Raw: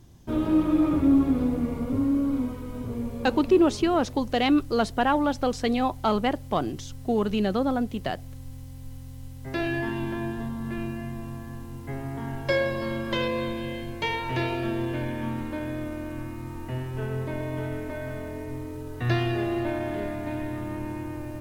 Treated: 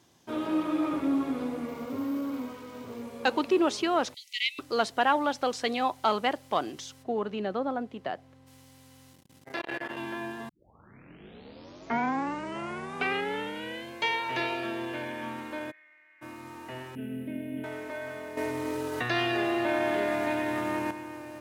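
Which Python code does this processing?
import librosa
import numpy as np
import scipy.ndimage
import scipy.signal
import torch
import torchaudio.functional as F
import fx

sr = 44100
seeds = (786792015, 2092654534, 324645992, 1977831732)

y = fx.resample_bad(x, sr, factor=3, down='none', up='hold', at=(1.68, 3.03))
y = fx.brickwall_highpass(y, sr, low_hz=1900.0, at=(4.14, 4.59))
y = fx.lowpass(y, sr, hz=1100.0, slope=6, at=(7.02, 8.46), fade=0.02)
y = fx.transformer_sat(y, sr, knee_hz=600.0, at=(9.12, 9.97))
y = fx.bandpass_q(y, sr, hz=2000.0, q=13.0, at=(15.7, 16.21), fade=0.02)
y = fx.curve_eq(y, sr, hz=(120.0, 260.0, 370.0, 560.0, 1100.0, 1500.0, 2900.0, 4600.0, 6900.0, 10000.0), db=(0, 14, -8, -5, -29, -14, -3, -26, -28, 2), at=(16.95, 17.64))
y = fx.env_flatten(y, sr, amount_pct=70, at=(18.37, 20.91))
y = fx.edit(y, sr, fx.tape_start(start_s=10.49, length_s=3.41), tone=tone)
y = fx.weighting(y, sr, curve='A')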